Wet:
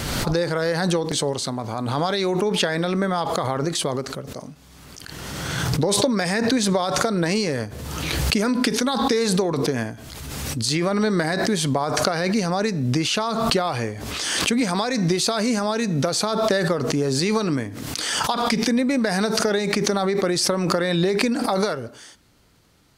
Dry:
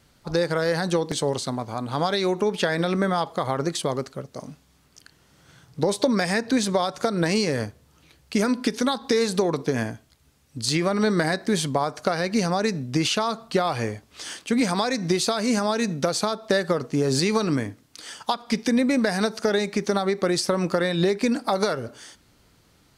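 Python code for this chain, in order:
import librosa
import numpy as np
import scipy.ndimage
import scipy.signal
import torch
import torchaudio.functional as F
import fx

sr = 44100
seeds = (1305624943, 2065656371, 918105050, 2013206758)

y = fx.pre_swell(x, sr, db_per_s=26.0)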